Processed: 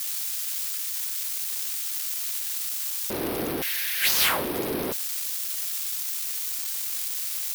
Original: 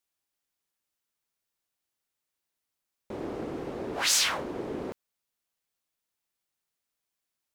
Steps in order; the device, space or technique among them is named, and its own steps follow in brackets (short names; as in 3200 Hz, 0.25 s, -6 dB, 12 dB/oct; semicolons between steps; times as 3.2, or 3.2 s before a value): 3.62–4.09 steep high-pass 1600 Hz 72 dB/oct; budget class-D amplifier (switching dead time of 0.059 ms; switching spikes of -21 dBFS); gain +5.5 dB